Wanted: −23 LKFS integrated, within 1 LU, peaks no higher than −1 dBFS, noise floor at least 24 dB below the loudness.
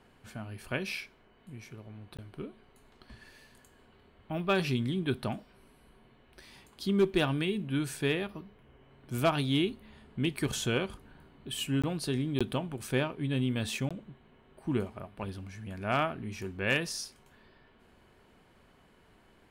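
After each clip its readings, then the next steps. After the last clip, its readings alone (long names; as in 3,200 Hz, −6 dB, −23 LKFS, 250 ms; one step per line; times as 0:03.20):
number of dropouts 4; longest dropout 16 ms; integrated loudness −32.5 LKFS; sample peak −17.5 dBFS; target loudness −23.0 LKFS
→ repair the gap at 0:02.17/0:11.82/0:12.39/0:13.89, 16 ms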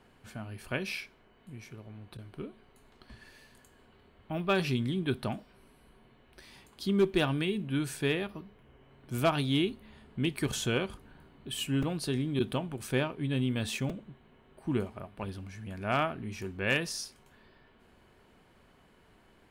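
number of dropouts 0; integrated loudness −32.5 LKFS; sample peak −17.5 dBFS; target loudness −23.0 LKFS
→ level +9.5 dB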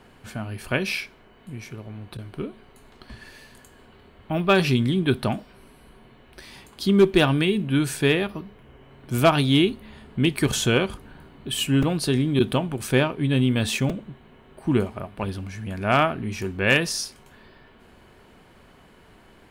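integrated loudness −23.0 LKFS; sample peak −8.0 dBFS; background noise floor −53 dBFS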